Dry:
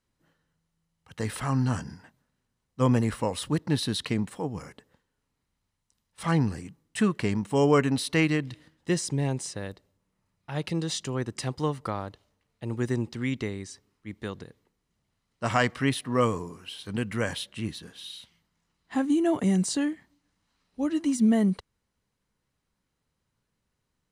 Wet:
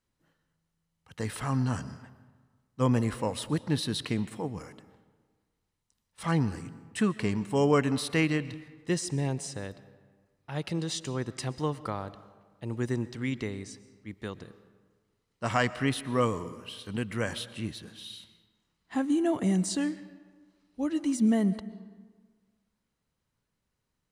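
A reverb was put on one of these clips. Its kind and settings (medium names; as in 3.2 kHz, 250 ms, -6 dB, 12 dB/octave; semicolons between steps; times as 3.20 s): algorithmic reverb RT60 1.5 s, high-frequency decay 0.6×, pre-delay 85 ms, DRR 16 dB; trim -2.5 dB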